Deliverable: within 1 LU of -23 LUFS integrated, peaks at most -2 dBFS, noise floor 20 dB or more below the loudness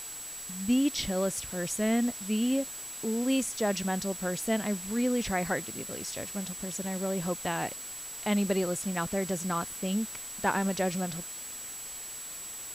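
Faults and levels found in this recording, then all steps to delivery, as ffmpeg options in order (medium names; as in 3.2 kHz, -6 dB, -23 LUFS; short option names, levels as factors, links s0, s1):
steady tone 7.8 kHz; tone level -40 dBFS; noise floor -41 dBFS; noise floor target -51 dBFS; loudness -31.0 LUFS; peak level -13.0 dBFS; loudness target -23.0 LUFS
-> -af "bandreject=f=7800:w=30"
-af "afftdn=nr=10:nf=-41"
-af "volume=2.51"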